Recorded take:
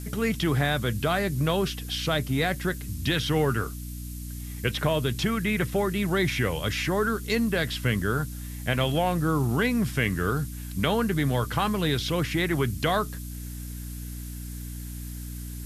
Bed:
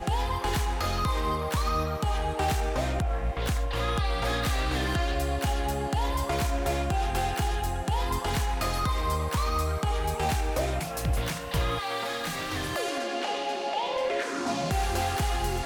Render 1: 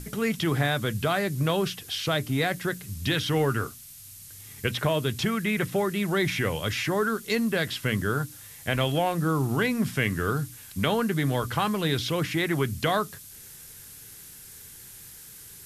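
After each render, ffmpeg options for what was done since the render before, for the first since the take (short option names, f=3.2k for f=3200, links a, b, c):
-af "bandreject=f=60:t=h:w=6,bandreject=f=120:t=h:w=6,bandreject=f=180:t=h:w=6,bandreject=f=240:t=h:w=6,bandreject=f=300:t=h:w=6"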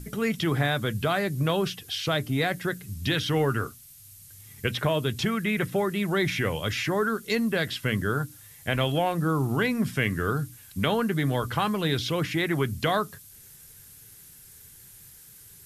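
-af "afftdn=nr=6:nf=-46"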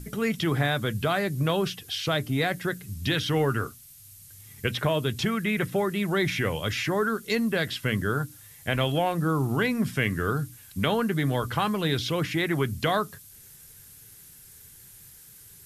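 -af anull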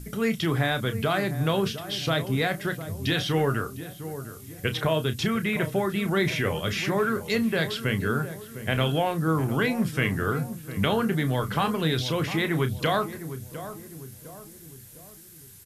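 -filter_complex "[0:a]asplit=2[a][b];[b]adelay=31,volume=-11dB[c];[a][c]amix=inputs=2:normalize=0,asplit=2[d][e];[e]adelay=705,lowpass=f=1k:p=1,volume=-11dB,asplit=2[f][g];[g]adelay=705,lowpass=f=1k:p=1,volume=0.5,asplit=2[h][i];[i]adelay=705,lowpass=f=1k:p=1,volume=0.5,asplit=2[j][k];[k]adelay=705,lowpass=f=1k:p=1,volume=0.5,asplit=2[l][m];[m]adelay=705,lowpass=f=1k:p=1,volume=0.5[n];[d][f][h][j][l][n]amix=inputs=6:normalize=0"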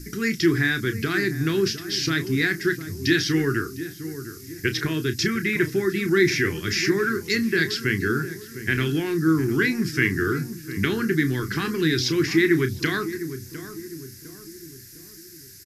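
-af "firequalizer=gain_entry='entry(220,0);entry(350,12);entry(550,-21);entry(1700,9);entry(3200,-4);entry(5000,14);entry(8800,-1);entry(14000,4)':delay=0.05:min_phase=1"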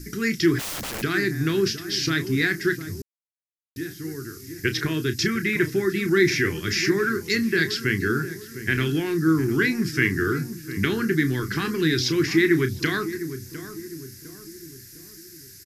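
-filter_complex "[0:a]asplit=3[a][b][c];[a]afade=t=out:st=0.58:d=0.02[d];[b]aeval=exprs='(mod(21.1*val(0)+1,2)-1)/21.1':c=same,afade=t=in:st=0.58:d=0.02,afade=t=out:st=1.01:d=0.02[e];[c]afade=t=in:st=1.01:d=0.02[f];[d][e][f]amix=inputs=3:normalize=0,asplit=3[g][h][i];[g]atrim=end=3.02,asetpts=PTS-STARTPTS,afade=t=out:st=3.016:d=0.004:c=hsin[j];[h]atrim=start=3.02:end=3.76,asetpts=PTS-STARTPTS,volume=0[k];[i]atrim=start=3.76,asetpts=PTS-STARTPTS,afade=t=in:d=0.004:c=hsin[l];[j][k][l]concat=n=3:v=0:a=1"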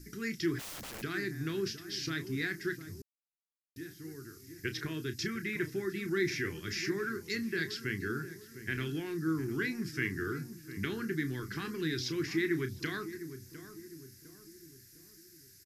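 -af "volume=-12.5dB"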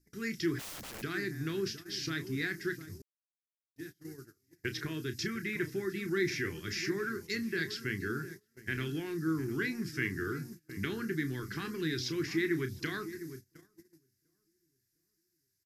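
-af "agate=range=-23dB:threshold=-45dB:ratio=16:detection=peak"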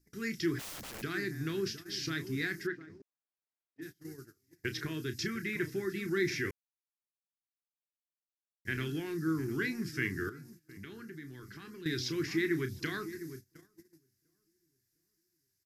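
-filter_complex "[0:a]asplit=3[a][b][c];[a]afade=t=out:st=2.66:d=0.02[d];[b]highpass=220,lowpass=2.2k,afade=t=in:st=2.66:d=0.02,afade=t=out:st=3.81:d=0.02[e];[c]afade=t=in:st=3.81:d=0.02[f];[d][e][f]amix=inputs=3:normalize=0,asettb=1/sr,asplit=3[g][h][i];[g]atrim=end=10.294[j];[h]atrim=start=10.29:end=11.86,asetpts=PTS-STARTPTS,afade=t=in:d=0.004:c=qsin,afade=t=out:st=1.566:d=0.004:c=qsin,acompressor=threshold=-53dB:ratio=2:attack=3.2:release=140:knee=1:detection=peak[k];[i]atrim=start=11.856[l];[j][k]acrossfade=d=0.004:c1=hsin:c2=qsin[m];[m][l]acrossfade=d=0.004:c1=qsin:c2=hsin,asplit=3[n][o][p];[n]atrim=end=6.51,asetpts=PTS-STARTPTS,afade=t=out:st=6.506:d=0.004:c=hsin[q];[o]atrim=start=6.51:end=8.65,asetpts=PTS-STARTPTS,volume=0[r];[p]atrim=start=8.65,asetpts=PTS-STARTPTS,afade=t=in:d=0.004:c=hsin[s];[q][r][s]concat=n=3:v=0:a=1"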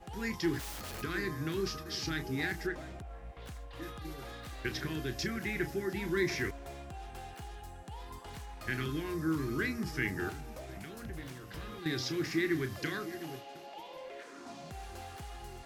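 -filter_complex "[1:a]volume=-18dB[a];[0:a][a]amix=inputs=2:normalize=0"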